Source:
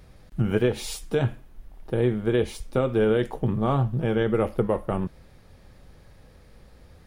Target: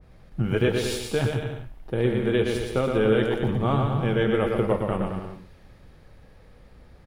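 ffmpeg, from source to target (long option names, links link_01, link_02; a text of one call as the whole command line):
ffmpeg -i in.wav -filter_complex "[0:a]bass=frequency=250:gain=0,treble=frequency=4000:gain=-7,asplit=2[link_01][link_02];[link_02]aecho=0:1:120|216|292.8|354.2|403.4:0.631|0.398|0.251|0.158|0.1[link_03];[link_01][link_03]amix=inputs=2:normalize=0,adynamicequalizer=threshold=0.01:dfrequency=1700:dqfactor=0.7:tfrequency=1700:tqfactor=0.7:attack=5:release=100:ratio=0.375:range=3.5:mode=boostabove:tftype=highshelf,volume=-1.5dB" out.wav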